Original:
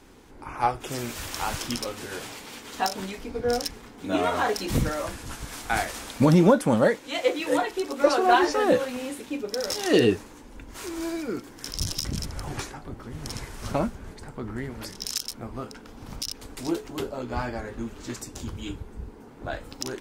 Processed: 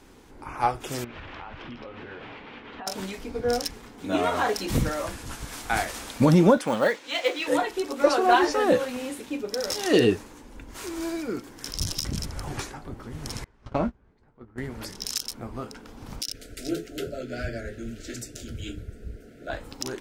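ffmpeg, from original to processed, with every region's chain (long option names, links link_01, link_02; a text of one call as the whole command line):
ffmpeg -i in.wav -filter_complex "[0:a]asettb=1/sr,asplit=3[link_01][link_02][link_03];[link_01]atrim=end=1.044[link_04];[link_02]atrim=start=1.04:end=2.87,asetpts=PTS-STARTPTS,afade=type=in:duration=0.004:curve=qsin,afade=type=out:start_time=1.826:duration=0.004:curve=qsin,lowpass=frequency=2900:width=0.5412,lowpass=frequency=2900:width=1.3066,acompressor=threshold=-36dB:ratio=8:attack=3.2:release=140:knee=1:detection=peak[link_05];[link_03]atrim=start=2.866[link_06];[link_04][link_05]acrossfade=duration=0.004:curve1=hsin:curve2=qsin[link_07];[link_07][link_06]acrossfade=duration=0.004:curve1=qsin:curve2=hsin,asettb=1/sr,asplit=3[link_08][link_09][link_10];[link_08]atrim=end=6.574[link_11];[link_09]atrim=start=6.57:end=7.48,asetpts=PTS-STARTPTS,afade=type=in:duration=0.004:curve=qsin,afade=type=out:start_time=0.906:duration=0.004:curve=qsin,lowpass=3700,aemphasis=mode=production:type=riaa,acrusher=bits=7:mode=log:mix=0:aa=0.000001[link_12];[link_10]atrim=start=7.476[link_13];[link_11][link_12]acrossfade=duration=0.004:curve1=hsin:curve2=qsin[link_14];[link_14][link_13]acrossfade=duration=0.004:curve1=qsin:curve2=hsin,asettb=1/sr,asplit=3[link_15][link_16][link_17];[link_15]atrim=end=13.444[link_18];[link_16]atrim=start=13.44:end=14.58,asetpts=PTS-STARTPTS,afade=type=in:duration=0.004:curve=qsin,afade=type=out:start_time=1.136:duration=0.004:curve=qsin,agate=range=-20dB:threshold=-31dB:ratio=16:release=100:detection=peak,asplit=2[link_19][link_20];[link_20]adelay=17,volume=-10dB[link_21];[link_19][link_21]amix=inputs=2:normalize=0,atrim=end_sample=50274,adynamicsmooth=sensitivity=1.5:basefreq=3100[link_22];[link_17]atrim=start=14.576[link_23];[link_18][link_22]acrossfade=duration=0.004:curve1=hsin:curve2=qsin[link_24];[link_24][link_23]acrossfade=duration=0.004:curve1=qsin:curve2=hsin,asettb=1/sr,asplit=3[link_25][link_26][link_27];[link_25]atrim=end=16.214[link_28];[link_26]atrim=start=16.21:end=19.5,asetpts=PTS-STARTPTS,afade=type=in:duration=0.004:curve=qsin,afade=type=out:start_time=3.286:duration=0.004:curve=qsin,asuperstop=centerf=970:order=20:qfactor=1.6,acrossover=split=240[link_29][link_30];[link_29]adelay=70[link_31];[link_31][link_30]amix=inputs=2:normalize=0,atrim=end_sample=145089[link_32];[link_27]atrim=start=19.496[link_33];[link_28][link_32]acrossfade=duration=0.004:curve1=hsin:curve2=qsin[link_34];[link_34][link_33]acrossfade=duration=0.004:curve1=qsin:curve2=hsin" out.wav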